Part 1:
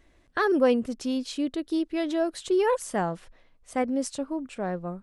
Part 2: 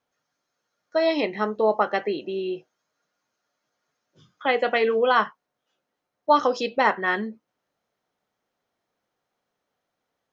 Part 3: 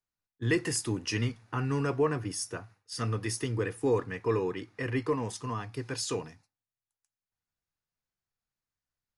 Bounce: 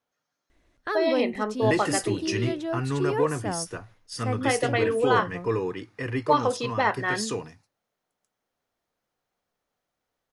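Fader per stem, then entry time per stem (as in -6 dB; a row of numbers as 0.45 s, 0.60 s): -4.5 dB, -3.5 dB, +2.0 dB; 0.50 s, 0.00 s, 1.20 s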